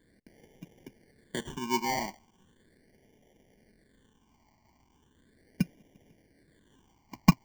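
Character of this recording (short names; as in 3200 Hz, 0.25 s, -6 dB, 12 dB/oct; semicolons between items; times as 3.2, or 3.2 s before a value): aliases and images of a low sample rate 1300 Hz, jitter 0%; phasing stages 8, 0.38 Hz, lowest notch 470–1300 Hz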